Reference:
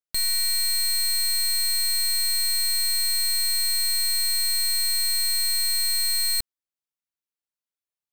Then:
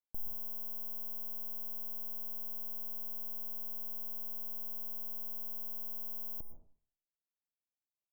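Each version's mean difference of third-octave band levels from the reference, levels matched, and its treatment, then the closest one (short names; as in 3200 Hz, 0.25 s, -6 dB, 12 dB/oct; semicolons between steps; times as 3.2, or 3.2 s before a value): 18.0 dB: inverse Chebyshev band-stop 1900–9600 Hz, stop band 50 dB; plate-style reverb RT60 0.5 s, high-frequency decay 0.3×, pre-delay 0.1 s, DRR 8 dB; gain -7 dB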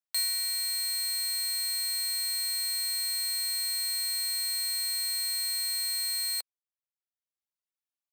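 2.0 dB: reverb removal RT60 0.94 s; steep high-pass 530 Hz 36 dB/oct; gain -3 dB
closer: second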